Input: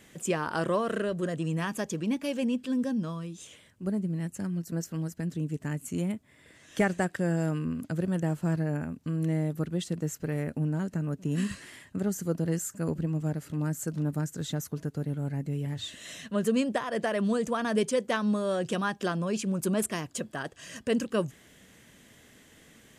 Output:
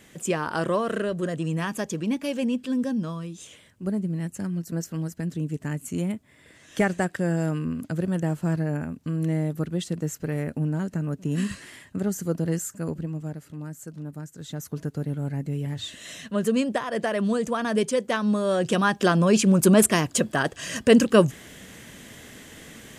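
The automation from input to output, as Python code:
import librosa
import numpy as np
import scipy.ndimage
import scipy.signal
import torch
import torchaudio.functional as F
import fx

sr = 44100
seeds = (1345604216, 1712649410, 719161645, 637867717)

y = fx.gain(x, sr, db=fx.line((12.56, 3.0), (13.69, -6.5), (14.36, -6.5), (14.77, 3.0), (18.18, 3.0), (19.32, 11.5)))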